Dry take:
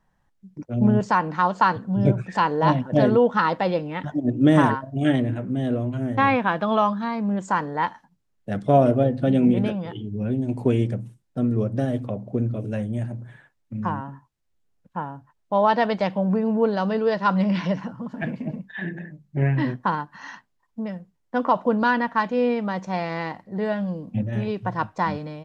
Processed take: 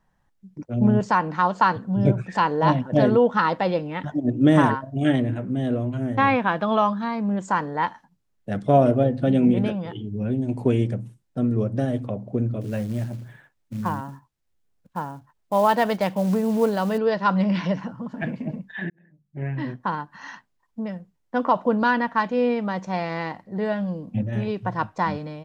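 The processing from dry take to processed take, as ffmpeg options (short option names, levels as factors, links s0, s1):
-filter_complex "[0:a]asettb=1/sr,asplit=3[s0][s1][s2];[s0]atrim=end=12.614[s3];[s1]atrim=start=12.61:end=16.98,asetpts=PTS-STARTPTS,afade=t=in:d=0.004:c=qsin,afade=t=out:st=4.366:d=0.004:c=qsin,acrusher=bits=6:mode=log:mix=0:aa=0.000001[s4];[s2]atrim=start=16.976[s5];[s3][s4]acrossfade=d=0.004:c1=hsin:c2=qsin[s6];[s6][s5]acrossfade=d=0.004:c1=qsin:c2=hsin,asplit=2[s7][s8];[s7]atrim=end=18.9,asetpts=PTS-STARTPTS,afade=t=out:st=18.896:d=0.004:c=hsin[s9];[s8]atrim=start=18.9,asetpts=PTS-STARTPTS,afade=t=in:d=1.39[s10];[s9][s10]concat=n=2:v=0:a=1"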